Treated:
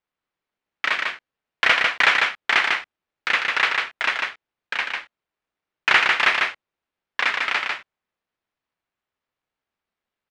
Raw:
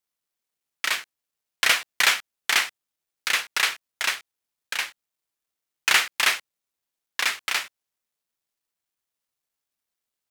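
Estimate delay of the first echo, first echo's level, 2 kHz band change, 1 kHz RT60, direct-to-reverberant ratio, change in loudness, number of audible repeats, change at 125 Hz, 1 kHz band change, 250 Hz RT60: 148 ms, -3.5 dB, +5.0 dB, no reverb, no reverb, +3.0 dB, 1, no reading, +7.0 dB, no reverb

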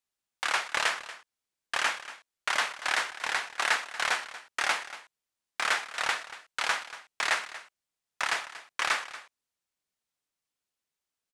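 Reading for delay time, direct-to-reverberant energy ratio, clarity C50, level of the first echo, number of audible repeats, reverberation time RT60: 235 ms, no reverb, no reverb, -15.5 dB, 1, no reverb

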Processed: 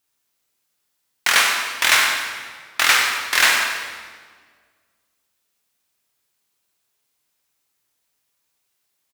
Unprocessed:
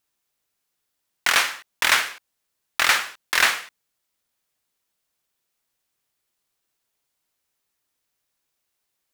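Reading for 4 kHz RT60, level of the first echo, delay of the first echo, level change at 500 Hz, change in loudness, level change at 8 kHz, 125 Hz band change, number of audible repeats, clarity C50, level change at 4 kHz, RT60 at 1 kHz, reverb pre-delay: 1.3 s, -9.5 dB, 95 ms, +3.0 dB, +3.5 dB, +5.5 dB, no reading, 1, 2.5 dB, +4.5 dB, 1.6 s, 8 ms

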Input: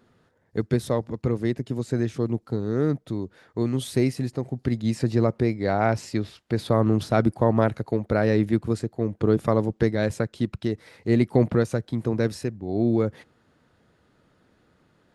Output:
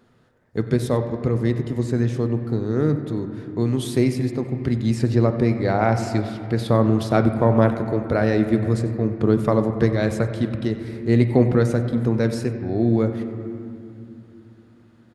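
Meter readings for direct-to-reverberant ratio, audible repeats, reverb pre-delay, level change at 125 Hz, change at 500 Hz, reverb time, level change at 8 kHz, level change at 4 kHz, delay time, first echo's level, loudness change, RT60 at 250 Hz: 6.5 dB, 1, 8 ms, +4.5 dB, +3.0 dB, 2.6 s, +2.0 dB, +2.5 dB, 94 ms, -17.0 dB, +3.5 dB, 4.2 s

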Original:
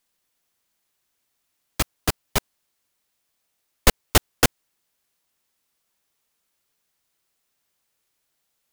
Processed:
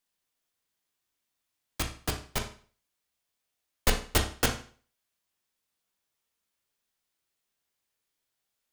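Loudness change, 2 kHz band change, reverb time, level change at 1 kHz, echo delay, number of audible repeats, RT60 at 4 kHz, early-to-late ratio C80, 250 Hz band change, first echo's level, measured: -7.5 dB, -7.0 dB, 0.45 s, -7.5 dB, no echo, no echo, 0.40 s, 14.0 dB, -7.5 dB, no echo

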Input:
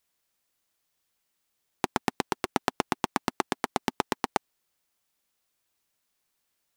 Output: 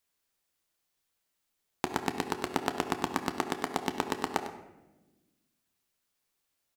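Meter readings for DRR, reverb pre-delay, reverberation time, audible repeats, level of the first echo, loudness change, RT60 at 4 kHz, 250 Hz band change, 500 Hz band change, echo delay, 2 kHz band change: 5.5 dB, 11 ms, 1.1 s, 1, -12.5 dB, -2.5 dB, 0.65 s, -1.5 dB, -1.5 dB, 101 ms, -2.5 dB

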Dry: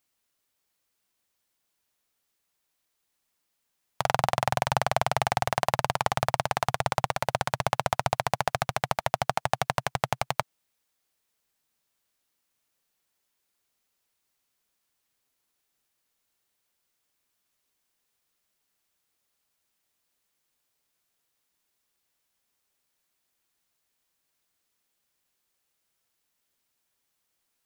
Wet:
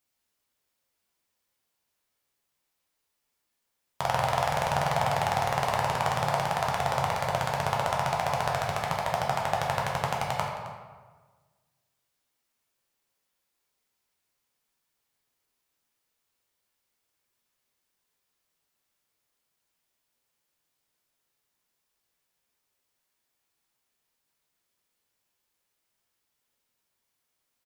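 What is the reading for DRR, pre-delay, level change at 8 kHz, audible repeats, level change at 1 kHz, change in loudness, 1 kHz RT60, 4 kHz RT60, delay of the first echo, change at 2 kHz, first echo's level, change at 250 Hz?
-2.5 dB, 7 ms, -2.0 dB, 1, +0.5 dB, 0.0 dB, 1.4 s, 0.95 s, 265 ms, -0.5 dB, -14.5 dB, +0.5 dB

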